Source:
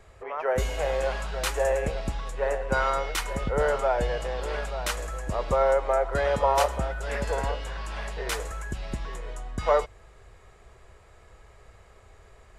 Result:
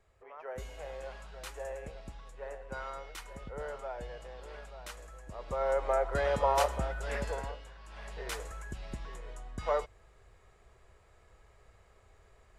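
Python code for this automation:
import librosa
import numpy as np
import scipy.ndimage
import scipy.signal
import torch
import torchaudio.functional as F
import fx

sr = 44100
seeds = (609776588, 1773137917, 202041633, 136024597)

y = fx.gain(x, sr, db=fx.line((5.34, -16.0), (5.84, -5.0), (7.18, -5.0), (7.78, -18.0), (8.15, -8.5)))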